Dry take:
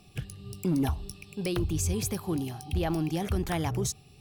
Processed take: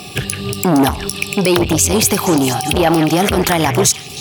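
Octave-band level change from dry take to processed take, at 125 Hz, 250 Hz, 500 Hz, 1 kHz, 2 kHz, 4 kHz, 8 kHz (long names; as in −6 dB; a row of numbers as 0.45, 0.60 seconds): +11.0, +15.5, +18.0, +20.5, +21.5, +21.5, +20.0 decibels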